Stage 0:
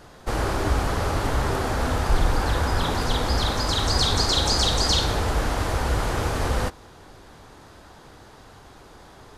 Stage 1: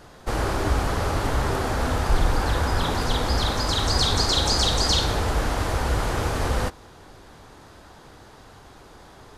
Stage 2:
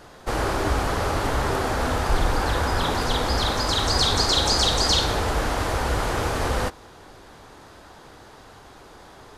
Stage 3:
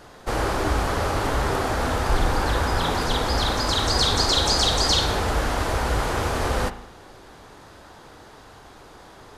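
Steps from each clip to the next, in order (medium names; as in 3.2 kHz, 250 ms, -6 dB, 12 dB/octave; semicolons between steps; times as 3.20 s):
no audible change
tone controls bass -4 dB, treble -1 dB; hard clipper -10 dBFS, distortion -53 dB; trim +2 dB
reverberation RT60 0.80 s, pre-delay 37 ms, DRR 11.5 dB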